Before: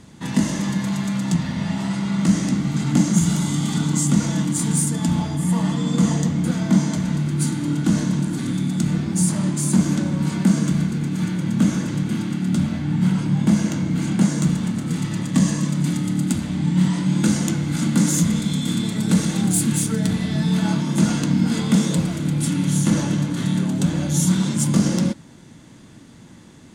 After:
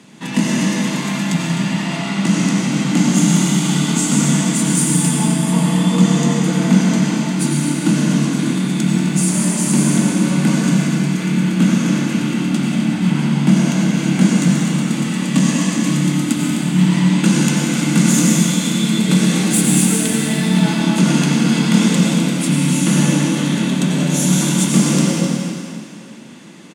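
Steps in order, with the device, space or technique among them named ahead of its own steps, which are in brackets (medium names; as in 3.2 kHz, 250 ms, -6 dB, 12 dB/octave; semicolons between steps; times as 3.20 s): stadium PA (high-pass 160 Hz 24 dB/octave; peaking EQ 2.6 kHz +7 dB 0.5 oct; loudspeakers at several distances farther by 64 m -12 dB, 88 m -10 dB; reverberation RT60 2.3 s, pre-delay 83 ms, DRR -1.5 dB); trim +2.5 dB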